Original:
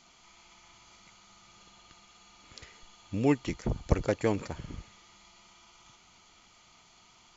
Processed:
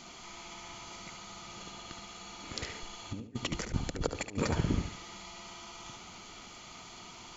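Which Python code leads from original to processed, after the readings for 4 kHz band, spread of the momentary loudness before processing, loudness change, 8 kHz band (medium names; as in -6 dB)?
+8.0 dB, 21 LU, -8.5 dB, no reading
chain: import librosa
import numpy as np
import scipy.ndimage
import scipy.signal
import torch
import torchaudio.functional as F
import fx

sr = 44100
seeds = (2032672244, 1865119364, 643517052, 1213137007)

y = fx.peak_eq(x, sr, hz=300.0, db=5.0, octaves=2.1)
y = fx.over_compress(y, sr, threshold_db=-35.0, ratio=-0.5)
y = fx.echo_feedback(y, sr, ms=72, feedback_pct=28, wet_db=-8.5)
y = F.gain(torch.from_numpy(y), 1.0).numpy()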